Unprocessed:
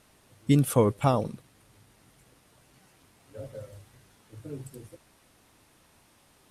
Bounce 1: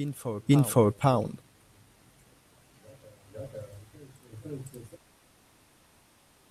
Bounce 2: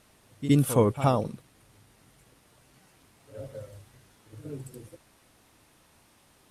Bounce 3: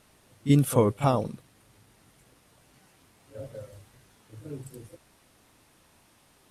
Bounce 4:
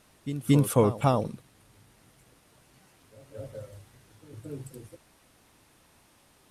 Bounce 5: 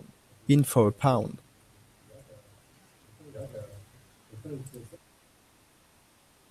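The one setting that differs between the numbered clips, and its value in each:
reverse echo, time: 508, 67, 35, 226, 1250 ms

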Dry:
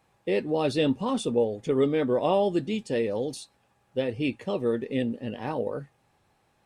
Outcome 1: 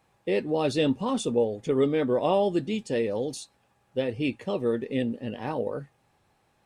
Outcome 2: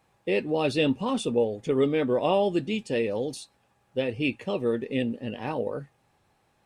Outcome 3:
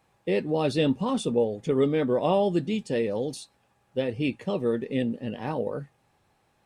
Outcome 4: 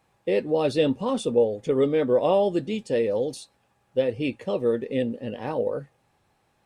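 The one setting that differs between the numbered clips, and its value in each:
dynamic EQ, frequency: 6700, 2600, 170, 520 Hz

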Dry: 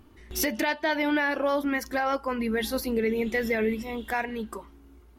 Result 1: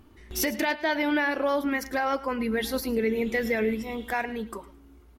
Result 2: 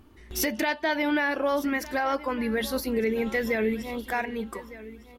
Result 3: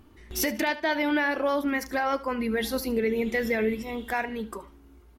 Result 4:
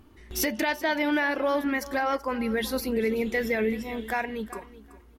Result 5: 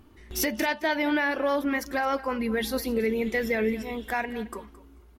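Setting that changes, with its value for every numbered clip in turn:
feedback echo, time: 108, 1207, 74, 380, 219 ms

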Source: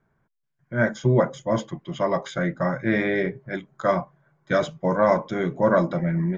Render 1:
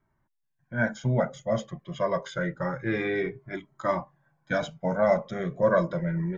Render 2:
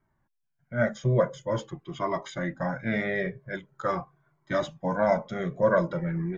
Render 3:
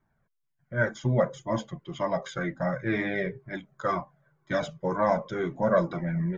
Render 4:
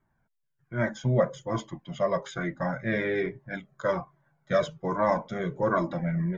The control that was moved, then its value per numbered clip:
cascading flanger, rate: 0.27, 0.45, 2, 1.2 Hz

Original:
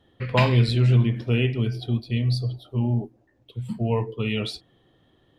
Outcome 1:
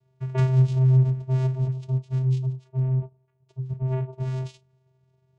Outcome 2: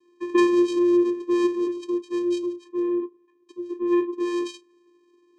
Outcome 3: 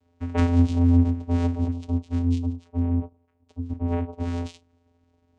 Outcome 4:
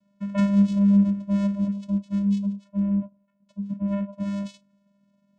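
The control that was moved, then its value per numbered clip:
vocoder, frequency: 130, 350, 86, 200 Hz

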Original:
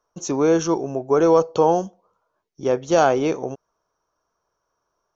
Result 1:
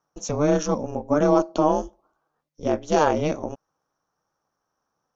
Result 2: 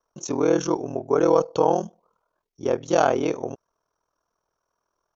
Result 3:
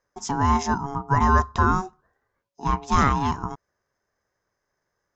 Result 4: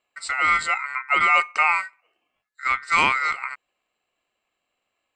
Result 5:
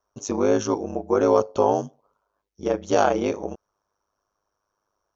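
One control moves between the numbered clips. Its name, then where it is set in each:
ring modulator, frequency: 150, 20, 560, 1700, 51 Hz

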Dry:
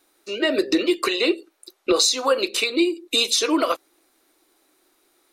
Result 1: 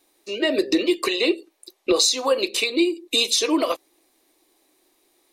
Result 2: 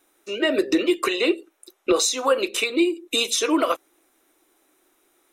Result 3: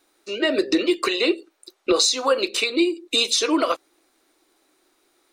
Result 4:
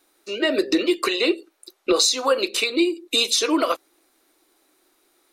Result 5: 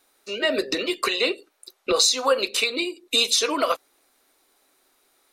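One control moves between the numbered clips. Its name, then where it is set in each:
bell, frequency: 1400, 4500, 12000, 100, 330 Hz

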